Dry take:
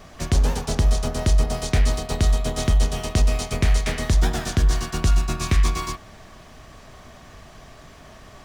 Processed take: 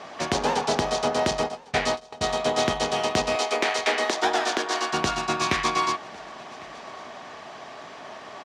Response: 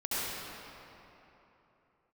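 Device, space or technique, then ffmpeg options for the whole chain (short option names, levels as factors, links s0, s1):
intercom: -filter_complex "[0:a]asettb=1/sr,asplit=3[s0][s1][s2];[s0]atrim=end=1.314[s3];[s1]atrim=start=1.31:end=2.36,asetpts=PTS-STARTPTS,afade=t=in:d=0.004:c=qsin,afade=t=out:st=1.046:d=0.004:c=qsin,agate=range=0.0158:threshold=0.1:ratio=16:detection=peak[s4];[s2]atrim=start=2.356[s5];[s3][s4]acrossfade=d=0.004:c1=hsin:c2=qsin[s6];[s6][s5]acrossfade=d=0.004:c1=qsin:c2=hsin,asettb=1/sr,asplit=3[s7][s8][s9];[s7]atrim=end=3.354[s10];[s8]atrim=start=3.35:end=4.93,asetpts=PTS-STARTPTS,afade=t=in:d=0.004:c=qsin,afade=t=out:st=1.576:d=0.004:c=qsin,highpass=f=290:w=0.5412,highpass=f=290:w=1.3066[s11];[s9]atrim=start=4.926[s12];[s10][s11]acrossfade=d=0.004:c1=hsin:c2=qsin[s13];[s13][s12]acrossfade=d=0.004:c1=qsin:c2=hsin,highpass=320,lowpass=5000,equalizer=f=850:t=o:w=0.5:g=5.5,asoftclip=type=tanh:threshold=0.158,aecho=1:1:1104:0.0631,volume=2"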